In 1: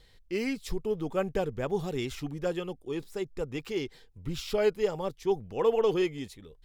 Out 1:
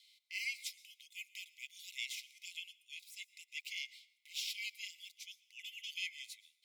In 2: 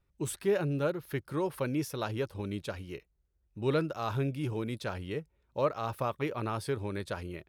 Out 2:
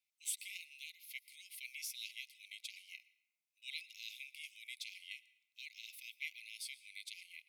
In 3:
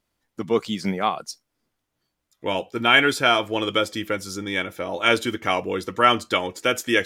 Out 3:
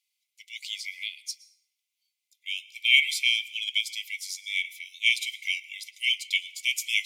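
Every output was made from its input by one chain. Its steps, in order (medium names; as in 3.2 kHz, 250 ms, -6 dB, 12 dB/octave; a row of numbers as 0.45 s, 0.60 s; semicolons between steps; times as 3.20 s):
brick-wall FIR high-pass 2 kHz; plate-style reverb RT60 0.91 s, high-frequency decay 0.6×, pre-delay 100 ms, DRR 17.5 dB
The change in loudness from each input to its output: -13.0 LU, -13.0 LU, -4.0 LU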